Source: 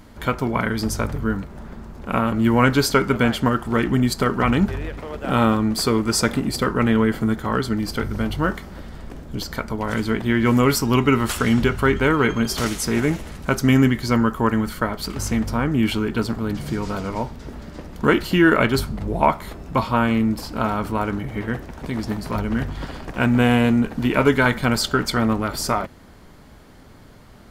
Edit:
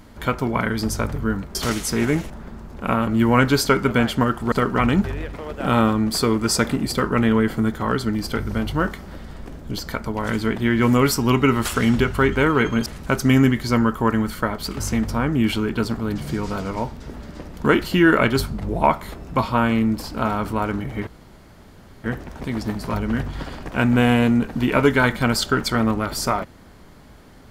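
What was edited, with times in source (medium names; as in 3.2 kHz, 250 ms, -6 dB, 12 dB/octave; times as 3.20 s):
3.77–4.16 s: delete
12.50–13.25 s: move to 1.55 s
21.46 s: insert room tone 0.97 s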